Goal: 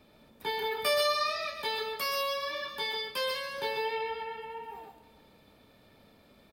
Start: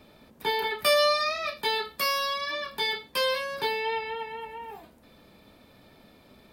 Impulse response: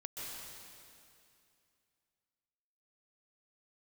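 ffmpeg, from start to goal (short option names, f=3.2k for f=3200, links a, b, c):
-filter_complex "[0:a]aecho=1:1:283|566|849:0.112|0.0438|0.0171[a];[1:a]atrim=start_sample=2205,atrim=end_sample=6615[b];[a][b]afir=irnorm=-1:irlink=0"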